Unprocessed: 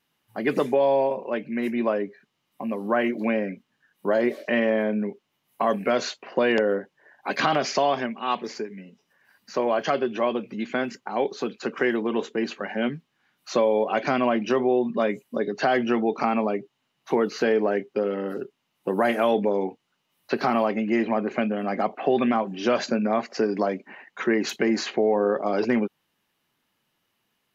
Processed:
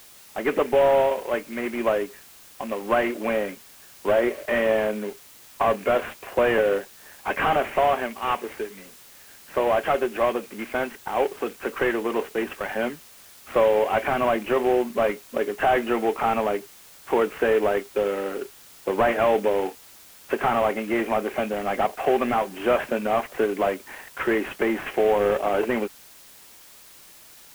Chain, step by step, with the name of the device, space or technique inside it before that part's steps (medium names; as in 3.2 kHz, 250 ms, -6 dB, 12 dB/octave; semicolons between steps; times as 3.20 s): army field radio (band-pass 380–3200 Hz; CVSD coder 16 kbps; white noise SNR 24 dB); trim +4 dB